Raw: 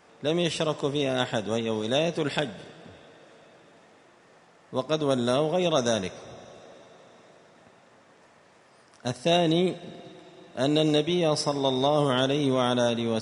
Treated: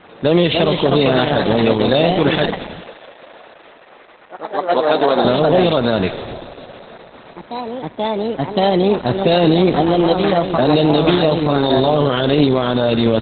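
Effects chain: frequency-shifting echo 222 ms, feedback 56%, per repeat -97 Hz, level -23.5 dB; ever faster or slower copies 321 ms, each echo +2 st, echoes 3, each echo -6 dB; 2.81–5.25 s: band-pass 400–4400 Hz; loudness maximiser +17 dB; trim -1.5 dB; Opus 8 kbps 48 kHz

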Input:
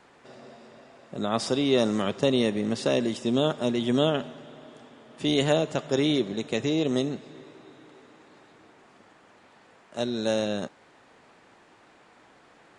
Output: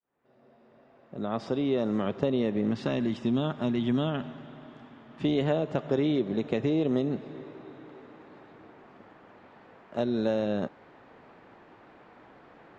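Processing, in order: fade-in on the opening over 3.01 s; 2.71–5.25 s: peaking EQ 490 Hz -10.5 dB 1 oct; compression 3:1, threshold -28 dBFS, peak gain reduction 8.5 dB; tape spacing loss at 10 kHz 31 dB; trim +5.5 dB

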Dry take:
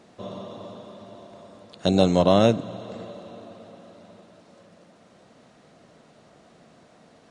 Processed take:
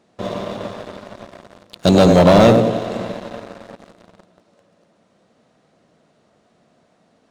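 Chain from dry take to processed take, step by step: tape echo 94 ms, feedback 59%, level -5 dB, low-pass 1.1 kHz; waveshaping leveller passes 3

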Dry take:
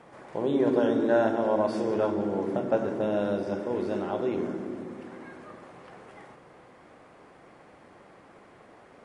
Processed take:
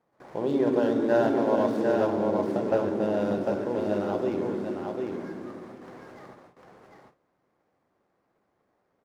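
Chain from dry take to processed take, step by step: median filter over 15 samples; gate with hold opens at -40 dBFS; on a send: delay 750 ms -4 dB

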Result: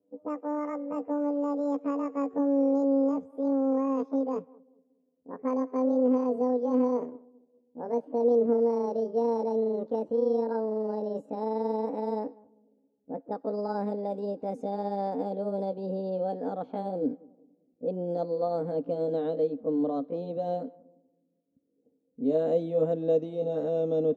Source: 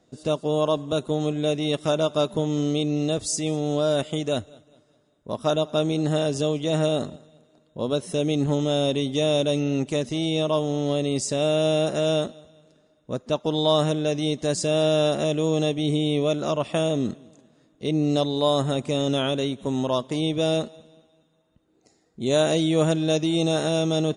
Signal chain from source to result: pitch bend over the whole clip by +12 st ending unshifted; level-controlled noise filter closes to 360 Hz, open at -20.5 dBFS; two resonant band-passes 360 Hz, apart 0.79 oct; trim +4.5 dB

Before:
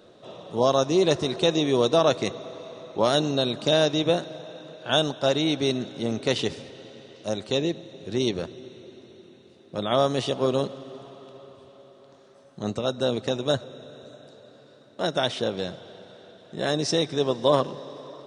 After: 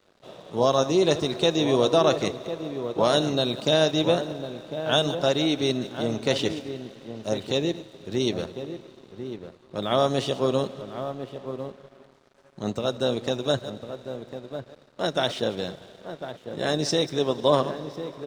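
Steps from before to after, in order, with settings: chunks repeated in reverse 103 ms, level -13 dB; echo from a far wall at 180 m, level -9 dB; crossover distortion -51 dBFS

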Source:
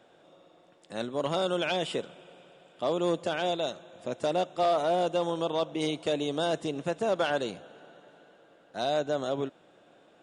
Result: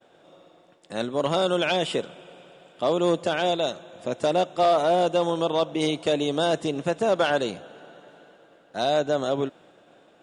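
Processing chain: expander -56 dBFS; trim +5.5 dB

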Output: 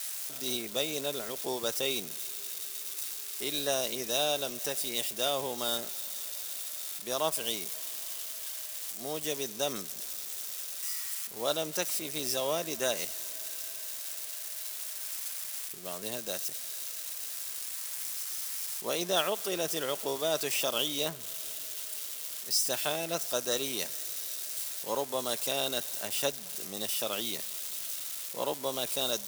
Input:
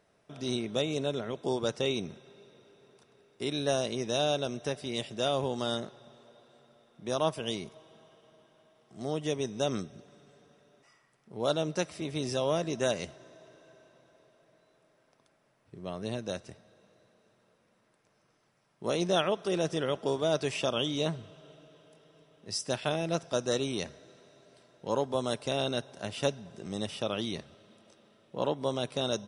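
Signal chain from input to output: zero-crossing glitches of -31 dBFS; high-pass 520 Hz 6 dB/octave; treble shelf 4.6 kHz +6.5 dB

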